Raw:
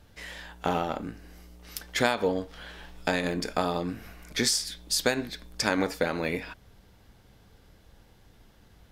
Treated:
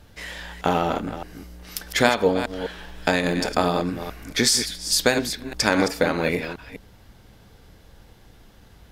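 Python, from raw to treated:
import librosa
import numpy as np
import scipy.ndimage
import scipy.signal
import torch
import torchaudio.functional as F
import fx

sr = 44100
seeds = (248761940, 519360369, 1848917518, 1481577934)

y = fx.reverse_delay(x, sr, ms=205, wet_db=-9.0)
y = F.gain(torch.from_numpy(y), 6.0).numpy()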